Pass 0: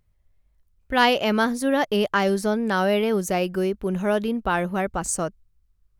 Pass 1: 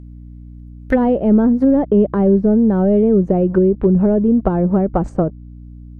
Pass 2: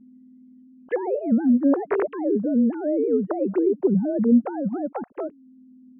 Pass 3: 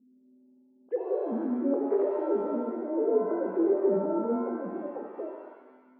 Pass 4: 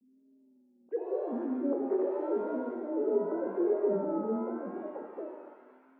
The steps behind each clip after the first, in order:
sample leveller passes 2; hum 60 Hz, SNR 24 dB; treble ducked by the level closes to 360 Hz, closed at -14 dBFS; gain +6 dB
sine-wave speech; gain -8 dB
band-pass 430 Hz, Q 2.2; shimmer reverb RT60 1.2 s, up +7 st, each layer -8 dB, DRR 1.5 dB; gain -5 dB
vibrato 0.87 Hz 90 cents; thin delay 0.425 s, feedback 67%, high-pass 2000 Hz, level -8.5 dB; gain -3.5 dB

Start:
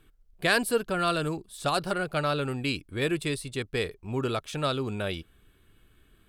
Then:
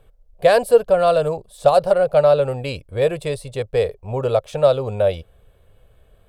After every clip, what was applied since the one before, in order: EQ curve 110 Hz 0 dB, 330 Hz -14 dB, 530 Hz +12 dB, 1400 Hz -9 dB; gain +8.5 dB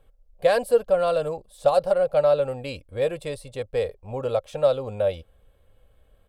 comb 3.7 ms, depth 32%; gain -6.5 dB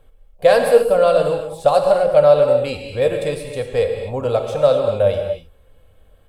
non-linear reverb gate 0.28 s flat, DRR 3.5 dB; gain +6 dB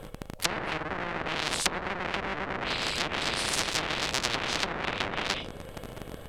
cycle switcher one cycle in 3, inverted; treble ducked by the level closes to 510 Hz, closed at -10.5 dBFS; spectral compressor 10:1; gain -2 dB

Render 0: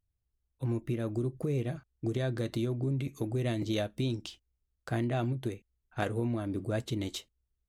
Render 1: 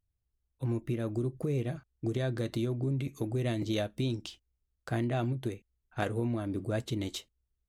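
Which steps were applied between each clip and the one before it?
nothing audible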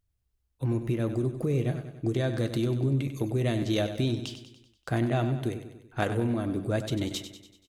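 feedback echo 96 ms, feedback 54%, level -10.5 dB; gain +4 dB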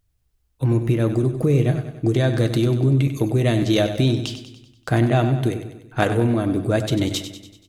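shoebox room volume 2400 m³, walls furnished, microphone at 0.49 m; gain +8.5 dB

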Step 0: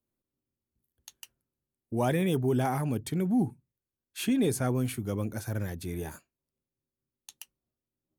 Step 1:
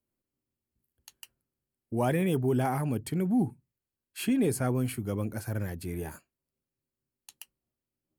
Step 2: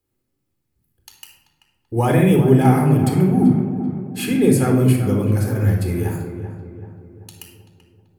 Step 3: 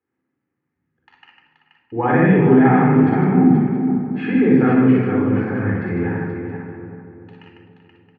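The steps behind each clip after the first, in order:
bell 6100 Hz -7.5 dB 0.24 oct; notch 3600 Hz, Q 6.9
darkening echo 0.385 s, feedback 51%, low-pass 1800 Hz, level -10 dB; shoebox room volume 2600 m³, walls furnished, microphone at 4 m; gain +6.5 dB
speaker cabinet 200–2100 Hz, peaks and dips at 360 Hz -4 dB, 600 Hz -8 dB, 1800 Hz +6 dB; tapped delay 46/58/150/478/671 ms -6/-3.5/-4/-6.5/-13.5 dB; gain +1 dB

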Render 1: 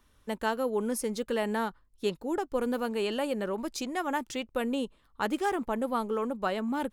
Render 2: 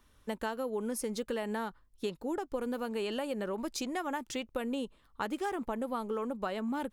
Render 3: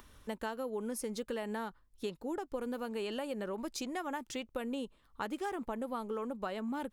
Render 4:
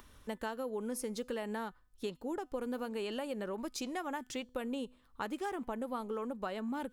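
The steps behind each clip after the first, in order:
compressor, threshold -31 dBFS, peak gain reduction 8 dB
upward compressor, threshold -45 dBFS; gain -3 dB
resonator 250 Hz, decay 0.55 s, harmonics all, mix 30%; gain +2.5 dB

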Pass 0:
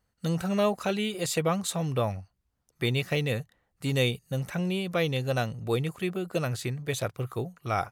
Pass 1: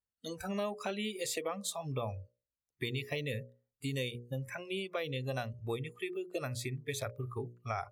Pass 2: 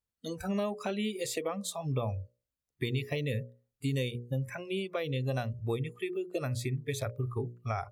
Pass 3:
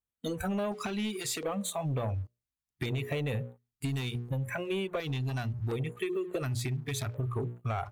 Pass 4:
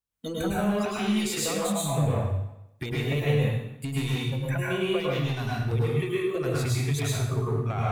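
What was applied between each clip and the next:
spectral noise reduction 21 dB; notches 60/120/180/240/300/360/420/480/540/600 Hz; compressor 4:1, threshold -31 dBFS, peak gain reduction 9 dB; gain -2.5 dB
low shelf 450 Hz +7 dB
sample leveller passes 2; compressor 4:1, threshold -30 dBFS, peak gain reduction 5.5 dB; LFO notch square 0.7 Hz 530–5100 Hz
reverb RT60 0.85 s, pre-delay 99 ms, DRR -5.5 dB

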